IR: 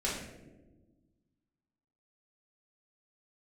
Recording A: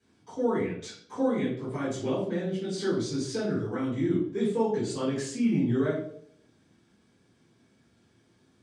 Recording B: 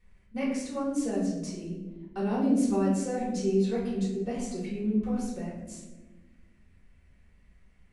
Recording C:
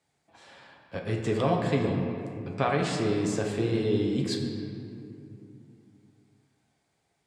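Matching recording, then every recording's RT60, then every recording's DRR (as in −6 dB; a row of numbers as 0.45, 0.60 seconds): B; 0.65, 1.2, 2.7 seconds; −11.5, −7.5, 0.0 decibels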